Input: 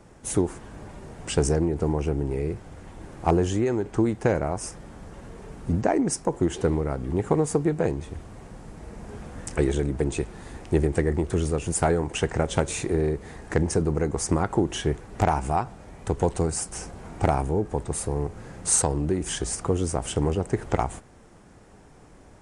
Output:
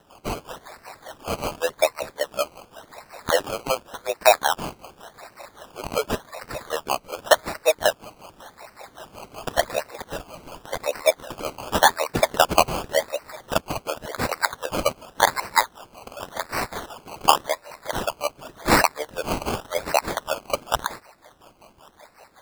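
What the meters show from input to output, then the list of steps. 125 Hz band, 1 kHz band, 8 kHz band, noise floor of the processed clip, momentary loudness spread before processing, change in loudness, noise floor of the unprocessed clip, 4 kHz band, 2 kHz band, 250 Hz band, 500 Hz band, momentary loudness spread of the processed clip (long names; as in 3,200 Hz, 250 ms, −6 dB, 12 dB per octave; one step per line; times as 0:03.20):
−12.0 dB, +7.0 dB, −1.5 dB, −55 dBFS, 18 LU, +1.5 dB, −51 dBFS, +10.5 dB, +10.5 dB, −8.5 dB, +1.5 dB, 22 LU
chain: auto-filter high-pass sine 5.3 Hz 440–4,200 Hz
frequency shifter +160 Hz
sample-and-hold swept by an LFO 19×, swing 60% 0.89 Hz
level +4 dB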